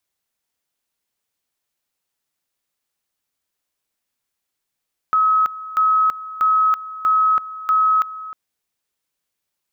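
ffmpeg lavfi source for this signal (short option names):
-f lavfi -i "aevalsrc='pow(10,(-12.5-16.5*gte(mod(t,0.64),0.33))/20)*sin(2*PI*1280*t)':d=3.2:s=44100"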